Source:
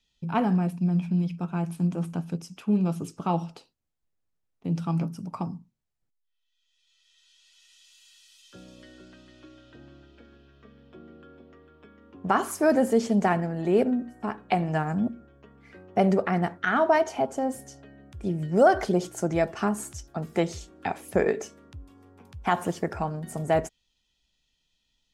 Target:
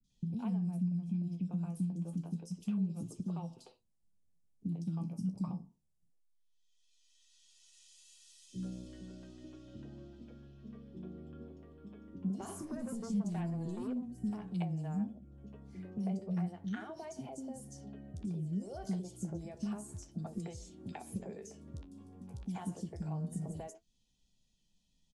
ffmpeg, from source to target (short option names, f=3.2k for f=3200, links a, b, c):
-filter_complex "[0:a]equalizer=f=1.7k:t=o:w=2.2:g=-14.5,acompressor=threshold=-40dB:ratio=2.5,asettb=1/sr,asplit=3[a][b][c];[a]atrim=end=12.384[d];[b]atrim=start=12.38:end=14.47,asetpts=PTS-STARTPTS,afade=t=in:d=0.004:c=qsin,afade=t=out:st=2.086:d=0.004:c=qsin,aeval=exprs='0.0398*sin(PI/2*1.41*val(0)/0.0398)':c=same[e];[c]atrim=start=14.466[f];[d][e]acrossfade=d=0.004:c1=hsin:c2=qsin[g];[g][f]acrossfade=d=0.004:c1=qsin:c2=hsin,flanger=delay=7.8:depth=8.1:regen=52:speed=0.29:shape=sinusoidal,acrossover=split=170|2500[h][i][j];[h]acompressor=threshold=-52dB:ratio=4[k];[i]acompressor=threshold=-50dB:ratio=4[l];[j]acompressor=threshold=-58dB:ratio=4[m];[k][l][m]amix=inputs=3:normalize=0,equalizer=f=190:t=o:w=0.5:g=8.5,bandreject=f=1.3k:w=18,acrossover=split=360|3600[n][o][p];[p]adelay=40[q];[o]adelay=100[r];[n][r][q]amix=inputs=3:normalize=0,volume=6.5dB" -ar 24000 -c:a aac -b:a 96k